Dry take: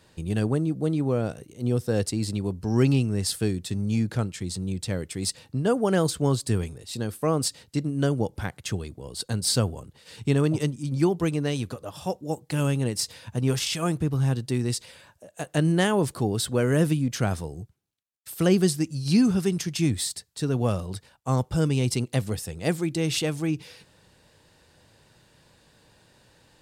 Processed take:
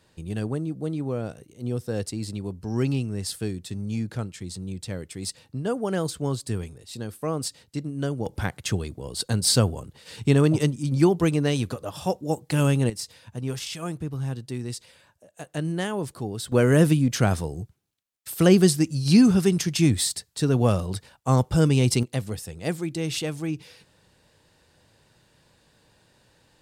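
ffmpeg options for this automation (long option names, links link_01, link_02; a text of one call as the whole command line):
ffmpeg -i in.wav -af "asetnsamples=nb_out_samples=441:pad=0,asendcmd='8.26 volume volume 3.5dB;12.9 volume volume -6dB;16.52 volume volume 4dB;22.03 volume volume -2.5dB',volume=-4dB" out.wav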